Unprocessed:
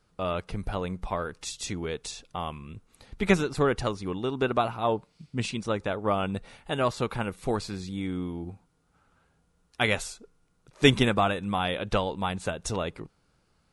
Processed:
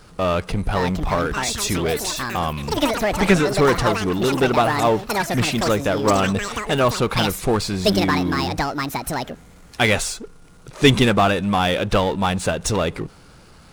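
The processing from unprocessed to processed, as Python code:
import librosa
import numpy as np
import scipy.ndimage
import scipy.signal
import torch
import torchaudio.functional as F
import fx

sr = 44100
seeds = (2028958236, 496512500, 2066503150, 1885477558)

y = fx.echo_pitch(x, sr, ms=625, semitones=7, count=3, db_per_echo=-6.0)
y = fx.power_curve(y, sr, exponent=0.7)
y = y * 10.0 ** (3.0 / 20.0)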